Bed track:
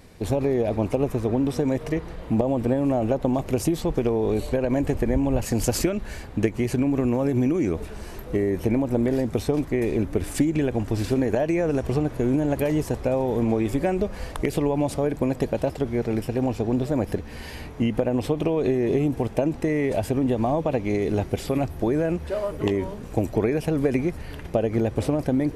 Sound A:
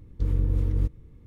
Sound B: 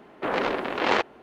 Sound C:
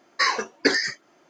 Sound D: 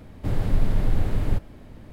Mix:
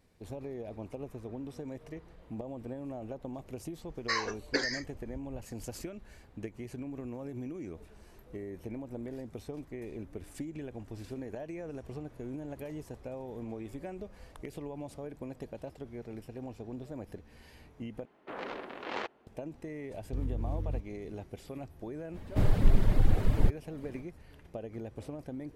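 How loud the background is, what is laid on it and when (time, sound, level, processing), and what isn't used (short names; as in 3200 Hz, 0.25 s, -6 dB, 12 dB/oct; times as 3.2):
bed track -18.5 dB
3.89 add C -10.5 dB
18.05 replace with B -14.5 dB
19.93 add A -5.5 dB + limiter -21.5 dBFS
22.12 add D, fades 0.05 s + reverb removal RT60 0.94 s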